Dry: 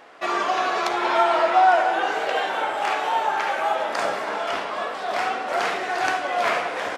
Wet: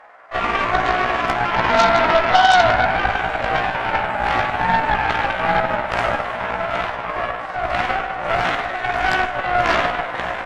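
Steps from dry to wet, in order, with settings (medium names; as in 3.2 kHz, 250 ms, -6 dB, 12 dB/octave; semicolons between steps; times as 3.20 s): high-order bell 1.1 kHz +13.5 dB 2.3 oct; Chebyshev shaper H 8 -15 dB, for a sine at 8.5 dBFS; granular stretch 1.5×, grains 100 ms; trim -9 dB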